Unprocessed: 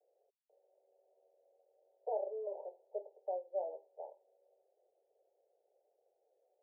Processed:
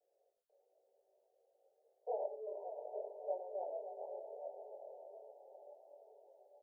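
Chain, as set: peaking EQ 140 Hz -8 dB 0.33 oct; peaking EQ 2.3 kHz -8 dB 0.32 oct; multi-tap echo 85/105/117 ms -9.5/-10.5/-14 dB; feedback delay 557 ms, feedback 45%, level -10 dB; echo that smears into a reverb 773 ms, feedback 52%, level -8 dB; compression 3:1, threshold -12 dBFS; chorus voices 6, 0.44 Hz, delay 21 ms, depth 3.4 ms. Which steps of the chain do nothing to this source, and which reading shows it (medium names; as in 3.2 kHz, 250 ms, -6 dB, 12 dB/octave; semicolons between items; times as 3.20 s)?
peaking EQ 140 Hz: input has nothing below 360 Hz; peaking EQ 2.3 kHz: input has nothing above 960 Hz; compression, threshold -12 dBFS: peak at its input -25.0 dBFS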